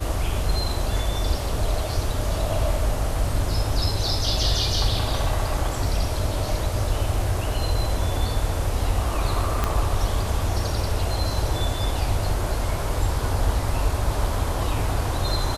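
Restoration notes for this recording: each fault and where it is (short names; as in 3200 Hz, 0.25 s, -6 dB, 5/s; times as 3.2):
9.64 pop -8 dBFS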